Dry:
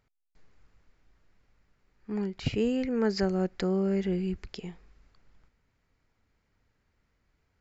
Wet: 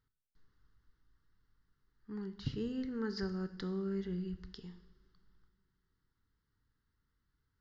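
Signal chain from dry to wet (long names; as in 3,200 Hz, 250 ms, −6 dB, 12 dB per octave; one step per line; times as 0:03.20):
phaser with its sweep stopped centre 2,400 Hz, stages 6
coupled-rooms reverb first 0.8 s, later 3.1 s, from −21 dB, DRR 9 dB
level −7.5 dB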